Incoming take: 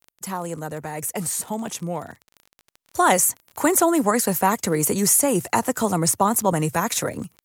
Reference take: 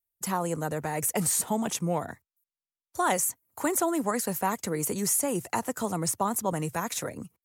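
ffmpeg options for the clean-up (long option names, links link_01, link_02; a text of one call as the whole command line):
ffmpeg -i in.wav -af "adeclick=threshold=4,asetnsamples=nb_out_samples=441:pad=0,asendcmd='2.63 volume volume -8.5dB',volume=0dB" out.wav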